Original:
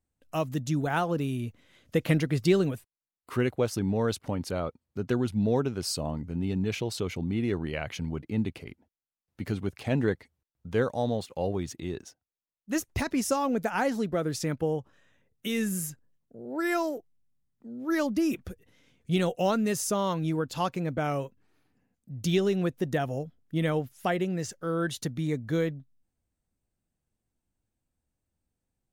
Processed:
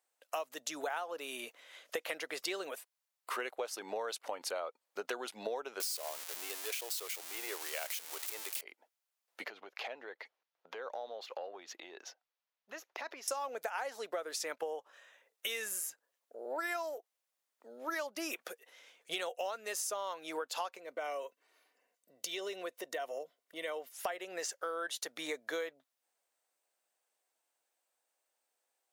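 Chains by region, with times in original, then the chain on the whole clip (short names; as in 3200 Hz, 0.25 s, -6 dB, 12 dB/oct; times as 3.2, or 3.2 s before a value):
5.8–8.61 switching spikes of -23 dBFS + HPF 330 Hz 24 dB/oct
9.44–13.28 compressor 10:1, threshold -40 dBFS + running mean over 5 samples
20.77–23.94 notch 1300 Hz, Q 6.7 + compressor 2:1, threshold -39 dBFS + notch comb 830 Hz
whole clip: HPF 540 Hz 24 dB/oct; compressor 10:1, threshold -42 dBFS; gain +7 dB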